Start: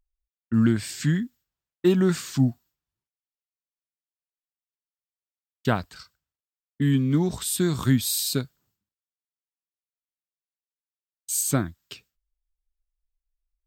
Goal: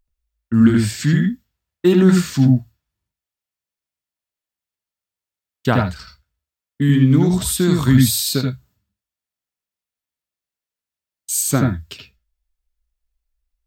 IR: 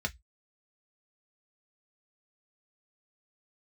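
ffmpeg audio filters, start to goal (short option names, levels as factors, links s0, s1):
-filter_complex "[0:a]asplit=2[s0][s1];[s1]equalizer=f=9000:w=1.5:g=-14[s2];[1:a]atrim=start_sample=2205,asetrate=42777,aresample=44100,adelay=77[s3];[s2][s3]afir=irnorm=-1:irlink=0,volume=0.447[s4];[s0][s4]amix=inputs=2:normalize=0,volume=1.88"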